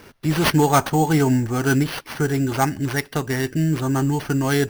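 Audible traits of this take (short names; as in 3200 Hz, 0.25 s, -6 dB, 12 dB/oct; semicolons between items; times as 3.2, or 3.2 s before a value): aliases and images of a low sample rate 7500 Hz, jitter 0%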